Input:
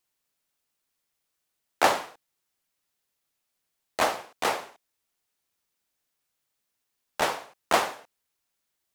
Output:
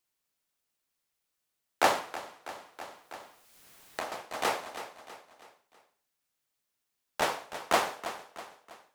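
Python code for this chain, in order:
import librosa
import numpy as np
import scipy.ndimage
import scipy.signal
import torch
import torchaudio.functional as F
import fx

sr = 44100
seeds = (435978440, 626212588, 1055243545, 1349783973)

y = fx.echo_feedback(x, sr, ms=324, feedback_pct=44, wet_db=-12.0)
y = fx.band_squash(y, sr, depth_pct=100, at=(1.98, 4.12))
y = F.gain(torch.from_numpy(y), -3.0).numpy()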